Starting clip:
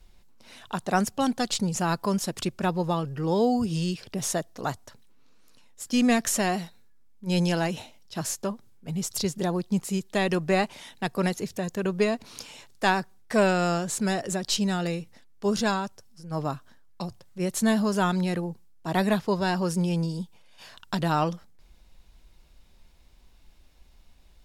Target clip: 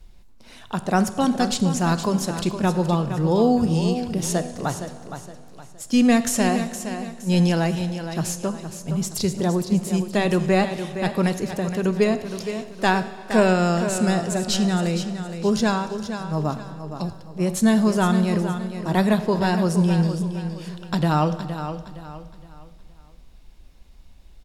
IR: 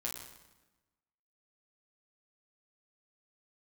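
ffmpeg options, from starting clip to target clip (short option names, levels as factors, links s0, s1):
-filter_complex "[0:a]lowshelf=f=390:g=5.5,aecho=1:1:466|932|1398|1864:0.335|0.117|0.041|0.0144,asplit=2[s0][s1];[1:a]atrim=start_sample=2205,asetrate=22491,aresample=44100[s2];[s1][s2]afir=irnorm=-1:irlink=0,volume=0.2[s3];[s0][s3]amix=inputs=2:normalize=0"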